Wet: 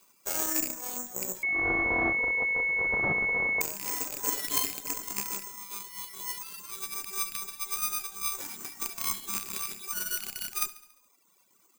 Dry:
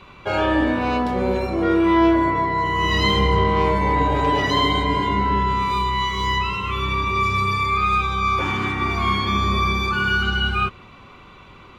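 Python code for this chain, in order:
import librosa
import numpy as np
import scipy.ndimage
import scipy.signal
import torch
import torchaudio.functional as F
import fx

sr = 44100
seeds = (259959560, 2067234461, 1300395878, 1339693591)

y = fx.rattle_buzz(x, sr, strikes_db=-20.0, level_db=-13.0)
y = fx.dereverb_blind(y, sr, rt60_s=0.53)
y = scipy.signal.sosfilt(scipy.signal.butter(4, 190.0, 'highpass', fs=sr, output='sos'), y)
y = fx.dereverb_blind(y, sr, rt60_s=1.4)
y = fx.cheby_harmonics(y, sr, harmonics=(3, 6, 7), levels_db=(-13, -26, -35), full_scale_db=-9.0)
y = fx.echo_feedback(y, sr, ms=70, feedback_pct=59, wet_db=-17.0)
y = (np.kron(y[::6], np.eye(6)[0]) * 6)[:len(y)]
y = fx.pwm(y, sr, carrier_hz=2200.0, at=(1.43, 3.61))
y = y * 10.0 ** (-9.0 / 20.0)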